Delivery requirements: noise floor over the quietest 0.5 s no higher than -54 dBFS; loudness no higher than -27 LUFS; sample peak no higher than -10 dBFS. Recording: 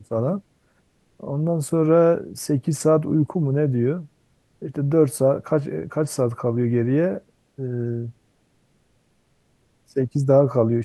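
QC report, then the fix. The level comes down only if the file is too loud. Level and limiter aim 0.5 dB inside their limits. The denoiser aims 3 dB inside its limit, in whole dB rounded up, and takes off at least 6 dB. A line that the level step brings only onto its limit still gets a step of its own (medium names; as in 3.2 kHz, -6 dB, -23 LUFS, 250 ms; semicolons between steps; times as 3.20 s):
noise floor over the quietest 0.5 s -64 dBFS: pass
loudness -21.5 LUFS: fail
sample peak -4.5 dBFS: fail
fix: trim -6 dB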